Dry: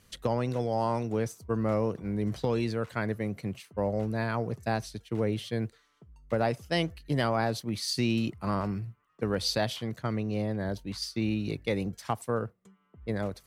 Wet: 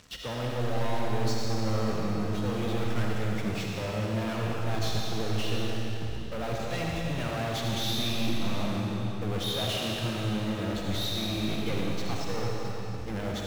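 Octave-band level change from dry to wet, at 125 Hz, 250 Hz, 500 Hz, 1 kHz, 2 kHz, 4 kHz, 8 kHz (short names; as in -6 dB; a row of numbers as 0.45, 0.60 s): +1.5, -0.5, -2.5, -1.5, +1.0, +4.5, +2.5 dB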